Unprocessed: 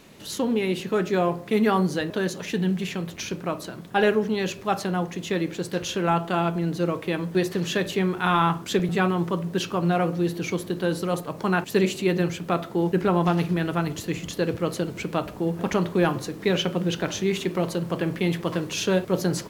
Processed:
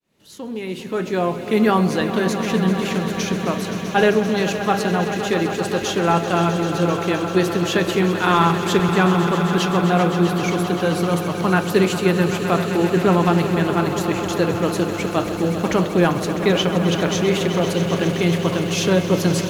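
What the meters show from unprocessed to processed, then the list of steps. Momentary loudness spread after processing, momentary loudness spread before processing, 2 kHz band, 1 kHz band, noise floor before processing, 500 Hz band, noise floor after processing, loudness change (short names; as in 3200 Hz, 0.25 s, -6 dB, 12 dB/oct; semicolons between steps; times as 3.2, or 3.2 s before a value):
6 LU, 7 LU, +6.5 dB, +6.0 dB, -40 dBFS, +5.5 dB, -28 dBFS, +6.0 dB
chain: opening faded in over 1.64 s; swelling echo 0.13 s, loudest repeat 5, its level -12.5 dB; gain +4.5 dB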